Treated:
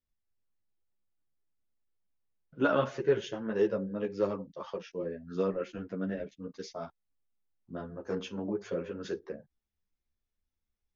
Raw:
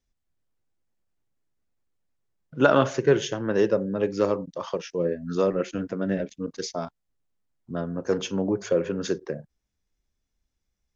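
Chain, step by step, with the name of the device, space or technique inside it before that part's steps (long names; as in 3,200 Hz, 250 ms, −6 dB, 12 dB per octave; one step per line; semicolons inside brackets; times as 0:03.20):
string-machine ensemble chorus (string-ensemble chorus; low-pass filter 4,500 Hz 12 dB per octave)
level −5.5 dB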